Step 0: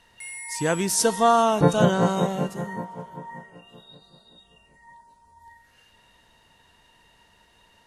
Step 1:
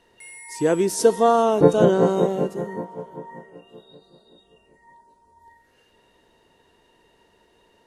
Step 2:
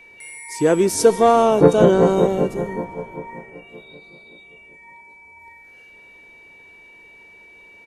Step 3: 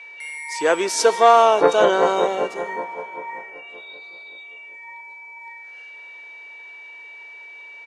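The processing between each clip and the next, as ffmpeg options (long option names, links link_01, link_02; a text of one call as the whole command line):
ffmpeg -i in.wav -af "equalizer=frequency=390:width_type=o:width=1.3:gain=14.5,volume=-5dB" out.wav
ffmpeg -i in.wav -filter_complex "[0:a]asplit=6[link_01][link_02][link_03][link_04][link_05][link_06];[link_02]adelay=152,afreqshift=-100,volume=-23dB[link_07];[link_03]adelay=304,afreqshift=-200,volume=-26.7dB[link_08];[link_04]adelay=456,afreqshift=-300,volume=-30.5dB[link_09];[link_05]adelay=608,afreqshift=-400,volume=-34.2dB[link_10];[link_06]adelay=760,afreqshift=-500,volume=-38dB[link_11];[link_01][link_07][link_08][link_09][link_10][link_11]amix=inputs=6:normalize=0,aeval=exprs='val(0)+0.00398*sin(2*PI*2300*n/s)':channel_layout=same,acontrast=23,volume=-1dB" out.wav
ffmpeg -i in.wav -af "highpass=790,lowpass=5600,volume=6.5dB" out.wav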